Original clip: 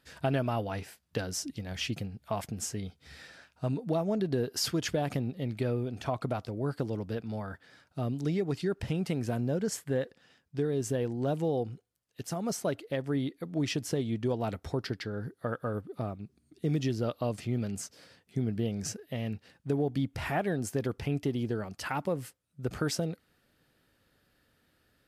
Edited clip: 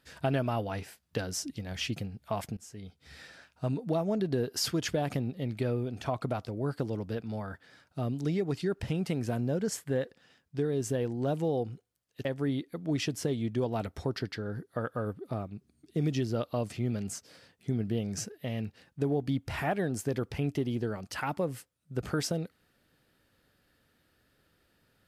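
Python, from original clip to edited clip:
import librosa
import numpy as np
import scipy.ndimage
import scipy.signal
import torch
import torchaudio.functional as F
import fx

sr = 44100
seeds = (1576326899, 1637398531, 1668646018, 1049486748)

y = fx.edit(x, sr, fx.fade_in_from(start_s=2.57, length_s=0.62, floor_db=-23.0),
    fx.cut(start_s=12.25, length_s=0.68), tone=tone)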